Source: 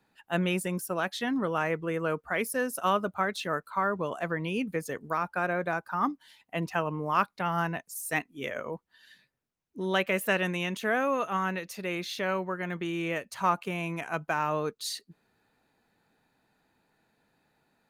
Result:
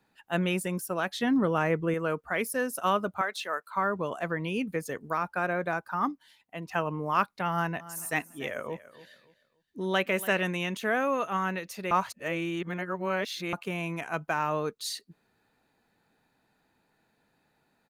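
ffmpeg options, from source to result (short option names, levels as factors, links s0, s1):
-filter_complex "[0:a]asettb=1/sr,asplit=3[s0][s1][s2];[s0]atrim=end=1.104[s3];[s1]atrim=start=1.1:end=1.94,asetpts=PTS-STARTPTS,afade=t=in:d=0.004:c=qsin,afade=t=out:st=0.836:d=0.004:c=qsin,lowshelf=f=470:g=6.5[s4];[s2]atrim=start=1.936[s5];[s3][s4]acrossfade=d=0.004:c1=hsin:c2=qsin[s6];[s6][s5]acrossfade=d=0.004:c1=qsin:c2=hsin,asettb=1/sr,asplit=3[s7][s8][s9];[s7]atrim=end=3.214[s10];[s8]atrim=start=3.21:end=3.75,asetpts=PTS-STARTPTS,afade=t=in:d=0.004:c=qsin,afade=t=out:st=0.536:d=0.004:c=qsin,highpass=560[s11];[s9]atrim=start=3.746[s12];[s10][s11]acrossfade=d=0.004:c1=hsin:c2=qsin[s13];[s13][s12]acrossfade=d=0.004:c1=qsin:c2=hsin,asplit=3[s14][s15][s16];[s14]afade=t=out:st=7.79:d=0.02[s17];[s15]aecho=1:1:286|572|858:0.141|0.0424|0.0127,afade=t=in:st=7.79:d=0.02,afade=t=out:st=10.42:d=0.02[s18];[s16]afade=t=in:st=10.42:d=0.02[s19];[s17][s18][s19]amix=inputs=3:normalize=0,asplit=4[s20][s21][s22][s23];[s20]atrim=end=6.69,asetpts=PTS-STARTPTS,afade=t=out:st=5.95:d=0.74:silence=0.354813[s24];[s21]atrim=start=6.69:end=11.912,asetpts=PTS-STARTPTS,afade=t=in:d=0.004:c=hsin:silence=0.354813[s25];[s22]atrim=start=11.908:end=13.532,asetpts=PTS-STARTPTS,areverse[s26];[s23]atrim=start=13.528[s27];[s24][s25]concat=n=2:v=0:a=1[s28];[s28][s26]acrossfade=d=0.004:c1=hsin:c2=hsin[s29];[s29][s27]acrossfade=d=0.004:c1=hsin:c2=hsin"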